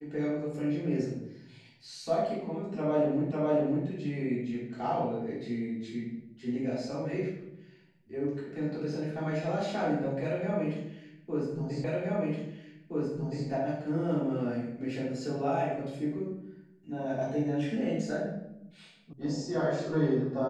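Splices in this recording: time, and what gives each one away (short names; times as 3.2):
3.32 repeat of the last 0.55 s
11.84 repeat of the last 1.62 s
19.13 sound cut off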